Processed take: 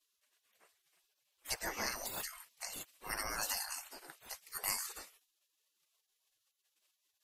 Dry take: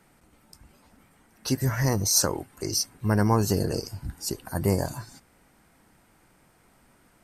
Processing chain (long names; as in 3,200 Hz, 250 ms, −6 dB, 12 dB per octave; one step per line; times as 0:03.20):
gate on every frequency bin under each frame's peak −25 dB weak
0:01.54–0:01.96: high-shelf EQ 6,600 Hz −10.5 dB
one half of a high-frequency compander decoder only
level +2.5 dB